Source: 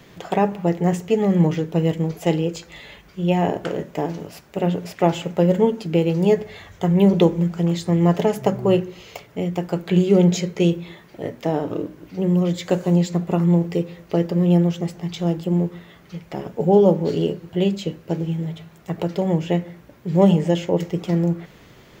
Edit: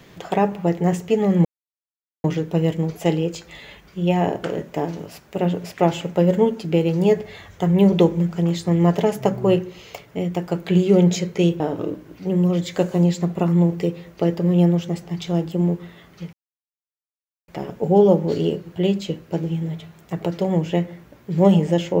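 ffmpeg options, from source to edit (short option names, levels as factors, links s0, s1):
-filter_complex "[0:a]asplit=4[s0][s1][s2][s3];[s0]atrim=end=1.45,asetpts=PTS-STARTPTS,afade=t=out:st=1.446:d=0.004:c=hsin,apad=pad_dur=0.79[s4];[s1]atrim=start=1.45:end=10.812,asetpts=PTS-STARTPTS,afade=t=in:d=0.004:c=hsin[s5];[s2]atrim=start=11.518:end=16.25,asetpts=PTS-STARTPTS,afade=t=out:st=4.728:d=0.004:c=hsin,apad=pad_dur=1.15[s6];[s3]atrim=start=16.25,asetpts=PTS-STARTPTS,afade=t=in:d=0.004:c=hsin[s7];[s4][s5]concat=n=2:v=0:a=1[s8];[s6][s7]concat=n=2:v=0:a=1[s9];[s8][s9]acrossfade=d=0.004:c1=hsin:c2=hsin"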